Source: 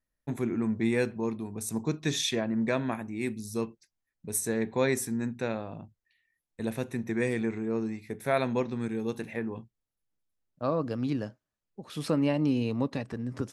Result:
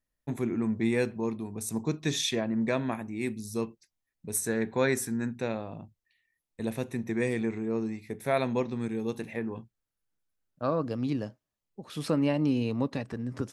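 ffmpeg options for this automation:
ffmpeg -i in.wav -af "asetnsamples=nb_out_samples=441:pad=0,asendcmd='4.37 equalizer g 6;5.39 equalizer g -4;9.48 equalizer g 5.5;10.85 equalizer g -5.5;11.82 equalizer g 0.5',equalizer=frequency=1500:width_type=o:width=0.34:gain=-2.5" out.wav

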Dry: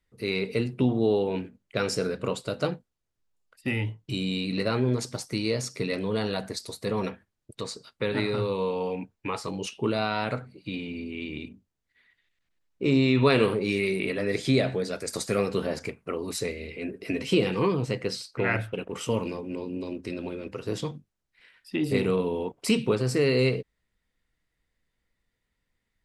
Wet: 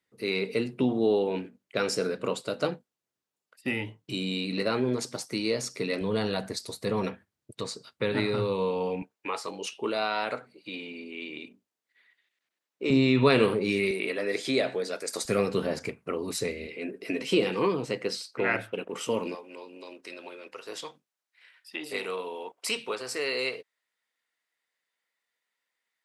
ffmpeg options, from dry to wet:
ffmpeg -i in.wav -af "asetnsamples=nb_out_samples=441:pad=0,asendcmd='6.01 highpass f 91;9.02 highpass f 380;12.9 highpass f 120;13.91 highpass f 340;15.25 highpass f 100;16.67 highpass f 240;19.35 highpass f 700',highpass=200" out.wav

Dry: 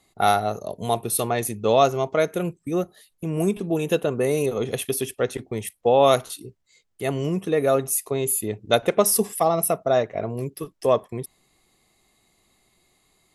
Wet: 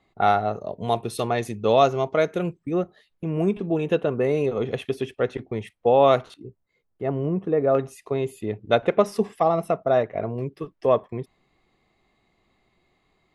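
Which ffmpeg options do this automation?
ffmpeg -i in.wav -af "asetnsamples=nb_out_samples=441:pad=0,asendcmd='0.88 lowpass f 4700;2.57 lowpass f 2800;6.34 lowpass f 1200;7.75 lowpass f 2700',lowpass=2600" out.wav

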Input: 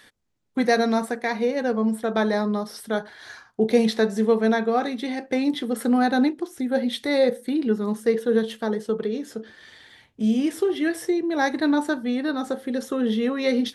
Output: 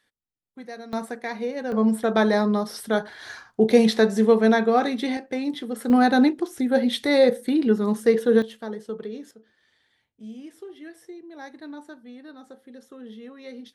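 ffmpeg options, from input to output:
ffmpeg -i in.wav -af "asetnsamples=nb_out_samples=441:pad=0,asendcmd='0.93 volume volume -5.5dB;1.72 volume volume 2.5dB;5.17 volume volume -4.5dB;5.9 volume volume 2.5dB;8.42 volume volume -7.5dB;9.31 volume volume -18dB',volume=-18.5dB" out.wav

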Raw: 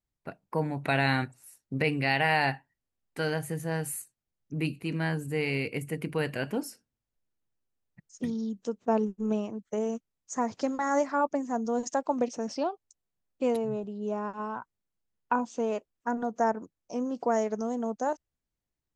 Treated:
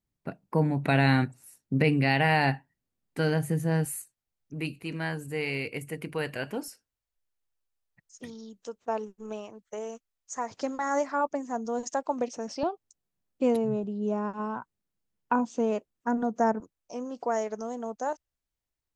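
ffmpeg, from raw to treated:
ffmpeg -i in.wav -af "asetnsamples=nb_out_samples=441:pad=0,asendcmd='3.85 equalizer g -4.5;6.68 equalizer g -13.5;10.51 equalizer g -4;12.63 equalizer g 5;16.6 equalizer g -6.5',equalizer=frequency=190:width_type=o:width=2.1:gain=7.5" out.wav

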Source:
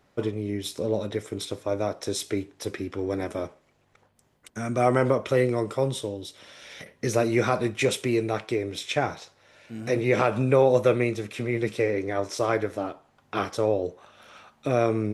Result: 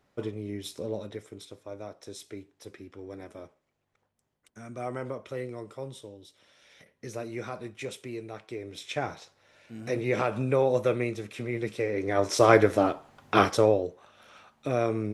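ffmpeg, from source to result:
ffmpeg -i in.wav -af "volume=14.5dB,afade=type=out:start_time=0.74:duration=0.72:silence=0.421697,afade=type=in:start_time=8.41:duration=0.72:silence=0.375837,afade=type=in:start_time=11.9:duration=0.64:silence=0.251189,afade=type=out:start_time=13.4:duration=0.47:silence=0.281838" out.wav

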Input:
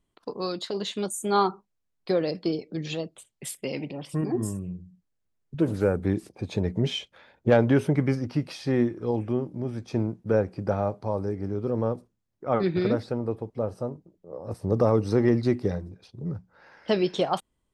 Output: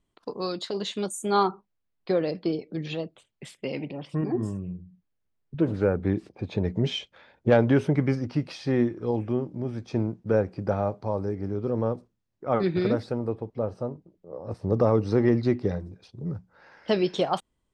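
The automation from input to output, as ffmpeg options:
ffmpeg -i in.wav -af "asetnsamples=nb_out_samples=441:pad=0,asendcmd='1.43 lowpass f 3800;6.65 lowpass f 6500;12.51 lowpass f 11000;13.31 lowpass f 5000;15.8 lowpass f 9100',lowpass=9500" out.wav

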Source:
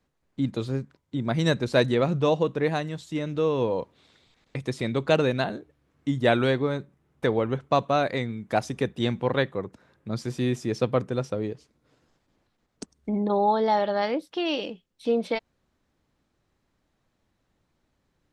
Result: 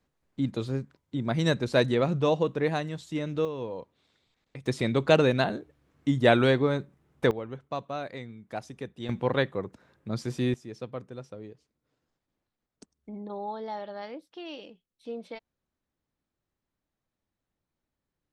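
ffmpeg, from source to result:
ffmpeg -i in.wav -af "asetnsamples=nb_out_samples=441:pad=0,asendcmd='3.45 volume volume -10dB;4.66 volume volume 1dB;7.31 volume volume -11.5dB;9.09 volume volume -1.5dB;10.54 volume volume -13.5dB',volume=-2dB" out.wav

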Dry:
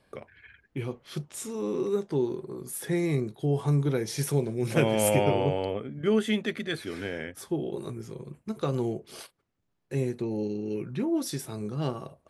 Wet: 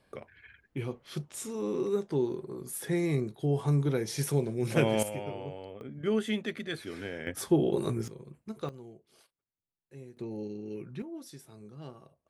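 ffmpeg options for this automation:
ffmpeg -i in.wav -af "asetnsamples=nb_out_samples=441:pad=0,asendcmd='5.03 volume volume -14dB;5.81 volume volume -4.5dB;7.27 volume volume 5.5dB;8.08 volume volume -6.5dB;8.69 volume volume -19dB;10.17 volume volume -7.5dB;11.02 volume volume -15dB',volume=-2dB" out.wav

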